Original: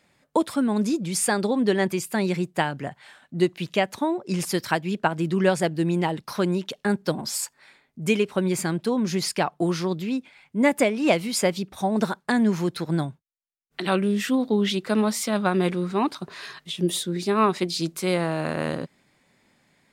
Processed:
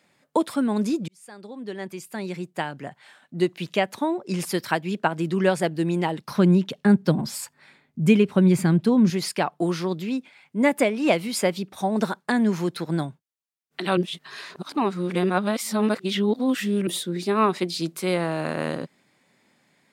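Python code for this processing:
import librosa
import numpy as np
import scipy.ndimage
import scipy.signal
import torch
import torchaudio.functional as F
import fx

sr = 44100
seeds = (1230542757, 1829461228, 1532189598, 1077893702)

y = fx.bass_treble(x, sr, bass_db=13, treble_db=-3, at=(6.28, 9.1))
y = fx.edit(y, sr, fx.fade_in_span(start_s=1.08, length_s=2.59),
    fx.reverse_span(start_s=13.97, length_s=2.9), tone=tone)
y = scipy.signal.sosfilt(scipy.signal.butter(2, 130.0, 'highpass', fs=sr, output='sos'), y)
y = fx.dynamic_eq(y, sr, hz=6400.0, q=1.4, threshold_db=-42.0, ratio=4.0, max_db=-4)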